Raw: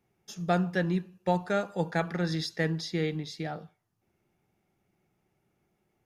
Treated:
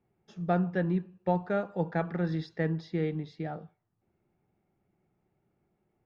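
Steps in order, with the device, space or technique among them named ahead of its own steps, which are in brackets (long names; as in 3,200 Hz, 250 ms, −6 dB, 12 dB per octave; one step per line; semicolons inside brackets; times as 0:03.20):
phone in a pocket (low-pass filter 3,800 Hz 12 dB per octave; high-shelf EQ 2,000 Hz −12 dB)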